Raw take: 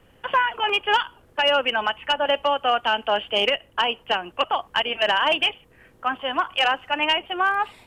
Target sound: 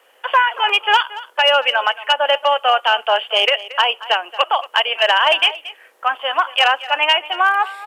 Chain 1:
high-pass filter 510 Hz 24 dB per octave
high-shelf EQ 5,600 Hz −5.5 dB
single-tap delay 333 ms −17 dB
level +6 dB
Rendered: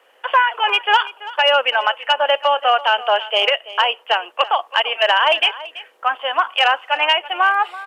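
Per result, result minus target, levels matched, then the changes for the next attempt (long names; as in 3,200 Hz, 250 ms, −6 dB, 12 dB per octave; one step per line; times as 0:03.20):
echo 105 ms late; 8,000 Hz band −4.5 dB
change: single-tap delay 228 ms −17 dB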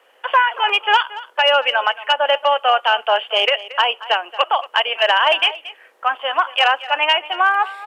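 8,000 Hz band −4.5 dB
change: high-shelf EQ 5,600 Hz +3 dB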